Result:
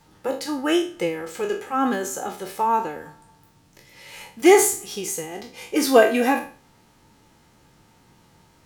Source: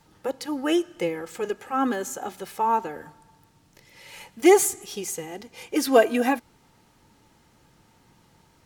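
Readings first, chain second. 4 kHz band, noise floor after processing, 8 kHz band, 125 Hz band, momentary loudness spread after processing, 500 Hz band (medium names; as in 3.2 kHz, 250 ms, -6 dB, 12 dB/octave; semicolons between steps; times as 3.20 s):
+4.0 dB, -57 dBFS, +3.5 dB, +3.0 dB, 18 LU, +2.5 dB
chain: spectral sustain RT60 0.39 s; trim +1.5 dB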